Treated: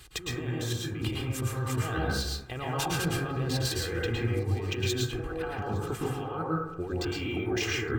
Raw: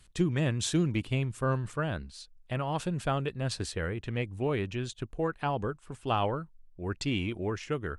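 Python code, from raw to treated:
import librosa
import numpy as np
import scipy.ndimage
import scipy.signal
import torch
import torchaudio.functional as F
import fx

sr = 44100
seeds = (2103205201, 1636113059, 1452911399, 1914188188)

p1 = scipy.signal.sosfilt(scipy.signal.butter(2, 44.0, 'highpass', fs=sr, output='sos'), x)
p2 = fx.low_shelf(p1, sr, hz=180.0, db=-4.5)
p3 = p2 + 0.65 * np.pad(p2, (int(2.5 * sr / 1000.0), 0))[:len(p2)]
p4 = fx.over_compress(p3, sr, threshold_db=-40.0, ratio=-1.0)
p5 = p4 + fx.echo_swing(p4, sr, ms=1149, ratio=3, feedback_pct=32, wet_db=-23, dry=0)
p6 = fx.rev_plate(p5, sr, seeds[0], rt60_s=0.89, hf_ratio=0.25, predelay_ms=100, drr_db=-4.5)
p7 = np.interp(np.arange(len(p6)), np.arange(len(p6))[::2], p6[::2])
y = p7 * 10.0 ** (3.0 / 20.0)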